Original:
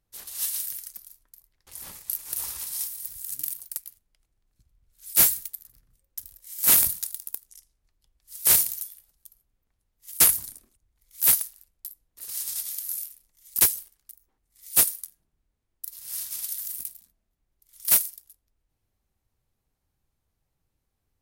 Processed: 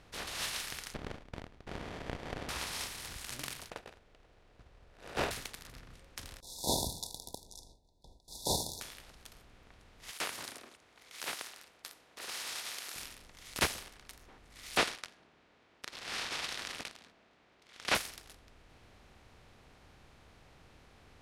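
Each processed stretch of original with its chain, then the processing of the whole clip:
0.94–2.49 s: high-order bell 1.3 kHz -15 dB 2.8 oct + compression 5:1, threshold -46 dBFS + sliding maximum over 33 samples
3.70–5.31 s: median filter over 41 samples + resonant low shelf 350 Hz -8.5 dB, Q 1.5
6.40–8.81 s: gate with hold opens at -49 dBFS, closes at -55 dBFS + brick-wall FIR band-stop 1–3.4 kHz
10.10–12.96 s: high-pass 430 Hz + compression 4:1, threshold -29 dBFS
14.77–17.95 s: band-pass 290–4200 Hz + waveshaping leveller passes 2
whole clip: spectral levelling over time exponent 0.6; low-pass 3.5 kHz 12 dB/octave

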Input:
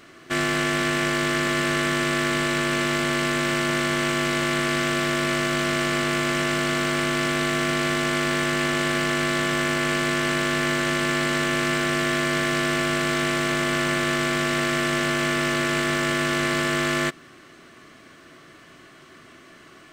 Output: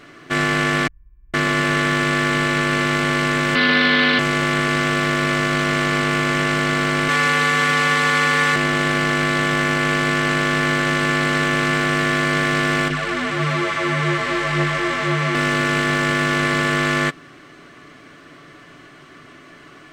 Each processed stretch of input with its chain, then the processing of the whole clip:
0.87–1.34 s: inverse Chebyshev band-stop 180–8600 Hz, stop band 60 dB + distance through air 420 m + flutter echo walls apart 5.4 m, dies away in 1.1 s
3.55–4.19 s: high-pass 140 Hz + resonant high shelf 5.5 kHz -11.5 dB, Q 3 + comb 4 ms, depth 88%
7.08–8.56 s: high-pass 360 Hz 6 dB/octave + comb 6.9 ms, depth 81%
12.88–15.35 s: treble shelf 8.8 kHz -8.5 dB + delay 514 ms -4 dB + detune thickener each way 20 cents
whole clip: treble shelf 5.9 kHz -9 dB; comb 6.9 ms, depth 34%; trim +4.5 dB

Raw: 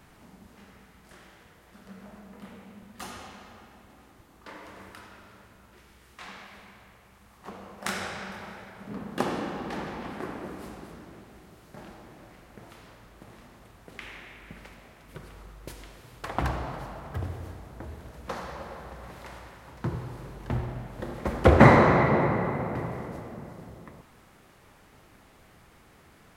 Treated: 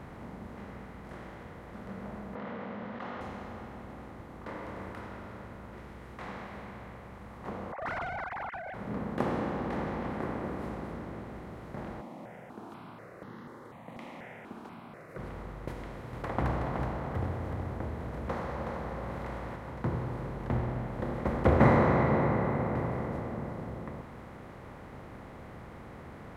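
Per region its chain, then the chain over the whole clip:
2.35–3.21 s: CVSD coder 64 kbps + cabinet simulation 310–3300 Hz, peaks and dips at 360 Hz -10 dB, 830 Hz -4 dB, 2.4 kHz -5 dB + level flattener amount 70%
7.72–8.74 s: formants replaced by sine waves + short-mantissa float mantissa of 4-bit + overdrive pedal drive 15 dB, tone 2.3 kHz, clips at -23 dBFS
12.01–15.19 s: high-pass 160 Hz 24 dB/octave + stepped phaser 4.1 Hz 420–2400 Hz
16.13–19.56 s: upward compressor, threshold -38 dBFS + delay 372 ms -7.5 dB
whole clip: spectral levelling over time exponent 0.6; treble shelf 2.1 kHz -9 dB; trim -8 dB

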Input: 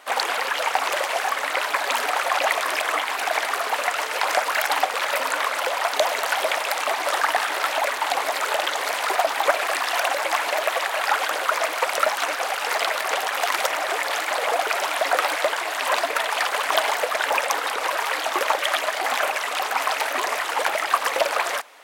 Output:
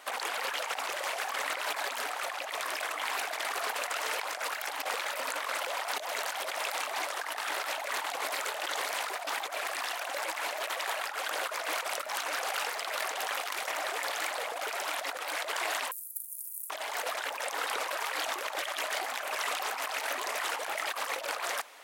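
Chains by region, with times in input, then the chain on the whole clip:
15.91–16.70 s: inverse Chebyshev band-stop 130–2300 Hz, stop band 80 dB + treble shelf 8.2 kHz +6 dB
whole clip: treble shelf 3.7 kHz +4 dB; compressor with a negative ratio -27 dBFS, ratio -1; bass shelf 66 Hz -8 dB; trim -8 dB

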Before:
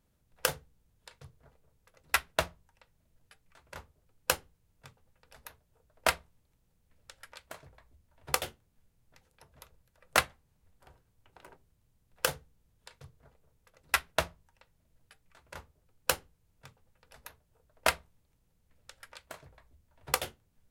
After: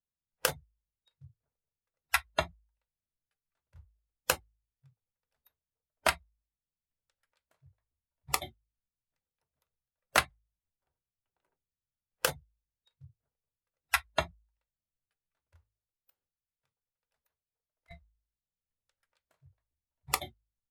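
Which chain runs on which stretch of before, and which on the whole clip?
15.56–17.91 s: bass shelf 370 Hz -5 dB + compression 10:1, threshold -47 dBFS
whole clip: spectral noise reduction 28 dB; de-hum 53.08 Hz, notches 2

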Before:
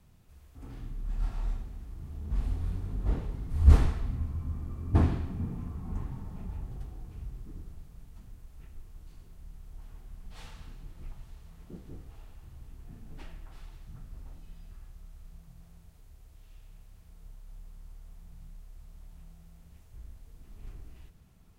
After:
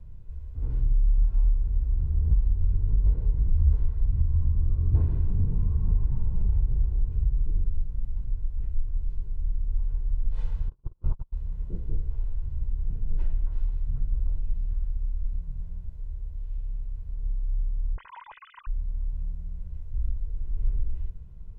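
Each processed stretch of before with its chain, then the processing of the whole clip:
10.68–11.32 s: spectral peaks clipped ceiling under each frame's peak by 17 dB + gate -41 dBFS, range -40 dB + resonant high shelf 1.5 kHz -6.5 dB, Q 3
17.96–18.67 s: formants replaced by sine waves + bass shelf 320 Hz +8.5 dB
whole clip: tilt EQ -4 dB/octave; compression 12:1, threshold -18 dBFS; comb 2 ms, depth 53%; trim -2.5 dB

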